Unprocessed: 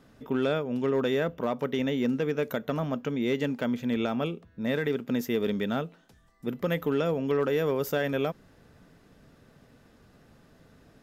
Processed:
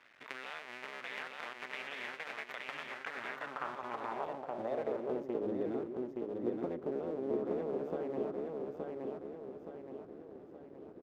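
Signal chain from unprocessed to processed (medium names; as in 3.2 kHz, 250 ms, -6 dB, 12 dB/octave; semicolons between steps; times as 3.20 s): cycle switcher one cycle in 2, muted; compression 6:1, threshold -39 dBFS, peak gain reduction 14.5 dB; feedback delay 871 ms, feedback 48%, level -3 dB; band-pass sweep 2.1 kHz -> 360 Hz, 2.86–5.51 s; trim +10.5 dB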